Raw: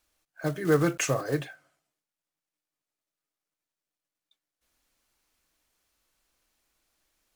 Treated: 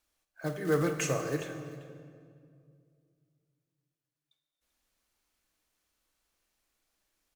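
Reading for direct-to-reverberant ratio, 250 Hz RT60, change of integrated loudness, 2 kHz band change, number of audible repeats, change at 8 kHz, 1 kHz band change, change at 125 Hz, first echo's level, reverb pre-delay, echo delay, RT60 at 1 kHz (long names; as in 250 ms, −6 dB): 6.0 dB, 2.9 s, −4.5 dB, −4.0 dB, 2, −4.0 dB, −4.0 dB, −4.0 dB, −14.5 dB, 19 ms, 50 ms, 2.0 s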